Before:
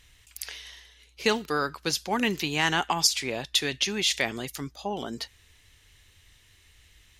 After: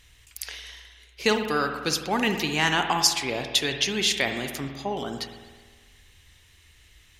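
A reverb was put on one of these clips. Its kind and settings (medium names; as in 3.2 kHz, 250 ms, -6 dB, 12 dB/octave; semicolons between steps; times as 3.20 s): spring tank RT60 1.5 s, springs 51 ms, chirp 75 ms, DRR 6 dB; trim +1.5 dB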